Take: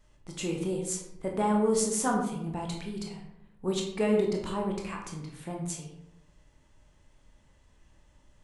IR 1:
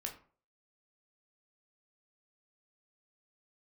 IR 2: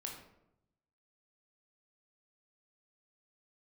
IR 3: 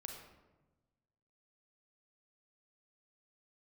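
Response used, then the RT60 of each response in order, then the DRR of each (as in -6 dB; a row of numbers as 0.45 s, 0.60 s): 2; 0.45 s, 0.85 s, 1.1 s; 1.5 dB, 0.0 dB, 1.5 dB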